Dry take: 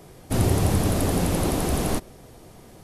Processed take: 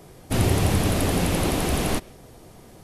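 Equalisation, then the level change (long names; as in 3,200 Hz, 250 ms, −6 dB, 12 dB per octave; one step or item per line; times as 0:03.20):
dynamic equaliser 2,600 Hz, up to +6 dB, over −48 dBFS, Q 0.89
0.0 dB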